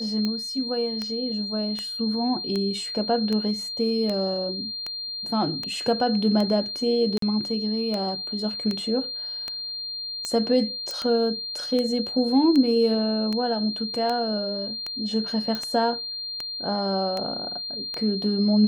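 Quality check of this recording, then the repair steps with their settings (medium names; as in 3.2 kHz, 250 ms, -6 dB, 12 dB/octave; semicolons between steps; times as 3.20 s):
tick 78 rpm -15 dBFS
whine 4.2 kHz -30 dBFS
7.18–7.22 s: dropout 43 ms
10.91 s: pop -18 dBFS
15.55 s: pop -16 dBFS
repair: de-click; band-stop 4.2 kHz, Q 30; interpolate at 7.18 s, 43 ms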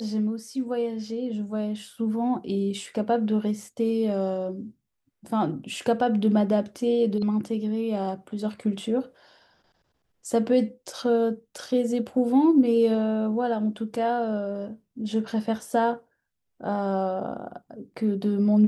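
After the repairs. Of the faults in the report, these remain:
nothing left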